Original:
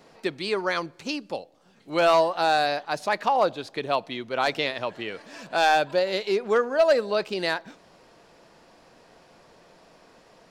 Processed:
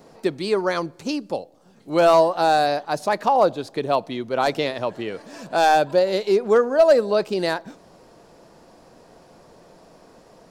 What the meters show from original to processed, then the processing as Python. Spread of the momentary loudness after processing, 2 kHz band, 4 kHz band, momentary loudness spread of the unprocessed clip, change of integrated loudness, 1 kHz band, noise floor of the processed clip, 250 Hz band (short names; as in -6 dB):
13 LU, -0.5 dB, -0.5 dB, 12 LU, +4.0 dB, +4.0 dB, -52 dBFS, +6.5 dB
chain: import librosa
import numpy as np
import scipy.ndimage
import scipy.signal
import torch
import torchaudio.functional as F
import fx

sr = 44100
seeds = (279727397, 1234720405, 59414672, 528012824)

y = fx.peak_eq(x, sr, hz=2500.0, db=-9.5, octaves=2.3)
y = F.gain(torch.from_numpy(y), 7.0).numpy()